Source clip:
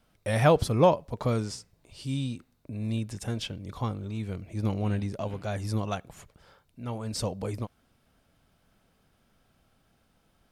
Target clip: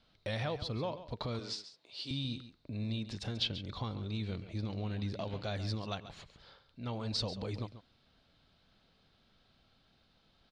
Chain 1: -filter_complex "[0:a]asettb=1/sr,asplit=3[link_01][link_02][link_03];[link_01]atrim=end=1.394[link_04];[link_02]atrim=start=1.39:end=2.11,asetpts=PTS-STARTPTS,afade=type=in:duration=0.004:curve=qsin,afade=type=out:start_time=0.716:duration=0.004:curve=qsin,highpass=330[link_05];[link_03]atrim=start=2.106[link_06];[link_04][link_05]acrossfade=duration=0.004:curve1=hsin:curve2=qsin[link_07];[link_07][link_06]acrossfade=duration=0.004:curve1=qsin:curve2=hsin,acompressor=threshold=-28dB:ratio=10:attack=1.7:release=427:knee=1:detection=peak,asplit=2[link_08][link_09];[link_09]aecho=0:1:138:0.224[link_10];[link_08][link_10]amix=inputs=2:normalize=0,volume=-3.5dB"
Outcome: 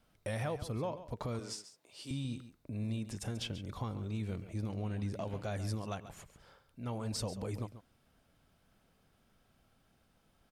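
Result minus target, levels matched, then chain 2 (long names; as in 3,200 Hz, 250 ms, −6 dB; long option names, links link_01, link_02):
4,000 Hz band −7.0 dB
-filter_complex "[0:a]asettb=1/sr,asplit=3[link_01][link_02][link_03];[link_01]atrim=end=1.394[link_04];[link_02]atrim=start=1.39:end=2.11,asetpts=PTS-STARTPTS,afade=type=in:duration=0.004:curve=qsin,afade=type=out:start_time=0.716:duration=0.004:curve=qsin,highpass=330[link_05];[link_03]atrim=start=2.106[link_06];[link_04][link_05]acrossfade=duration=0.004:curve1=hsin:curve2=qsin[link_07];[link_07][link_06]acrossfade=duration=0.004:curve1=qsin:curve2=hsin,acompressor=threshold=-28dB:ratio=10:attack=1.7:release=427:knee=1:detection=peak,lowpass=frequency=4100:width_type=q:width=4.4,asplit=2[link_08][link_09];[link_09]aecho=0:1:138:0.224[link_10];[link_08][link_10]amix=inputs=2:normalize=0,volume=-3.5dB"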